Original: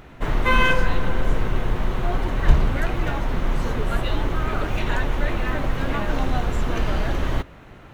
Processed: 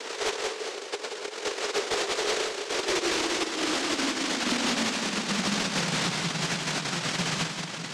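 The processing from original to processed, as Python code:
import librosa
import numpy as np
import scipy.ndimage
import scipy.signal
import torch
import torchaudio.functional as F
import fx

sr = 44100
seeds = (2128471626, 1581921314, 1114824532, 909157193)

y = fx.peak_eq(x, sr, hz=300.0, db=12.0, octaves=0.69)
y = fx.over_compress(y, sr, threshold_db=-23.0, ratio=-0.5)
y = fx.noise_vocoder(y, sr, seeds[0], bands=1)
y = fx.filter_sweep_highpass(y, sr, from_hz=420.0, to_hz=160.0, start_s=2.48, end_s=6.12, q=6.4)
y = np.clip(10.0 ** (22.0 / 20.0) * y, -1.0, 1.0) / 10.0 ** (22.0 / 20.0)
y = fx.air_absorb(y, sr, metres=81.0)
y = y + 10.0 ** (-6.0 / 20.0) * np.pad(y, (int(179 * sr / 1000.0), 0))[:len(y)]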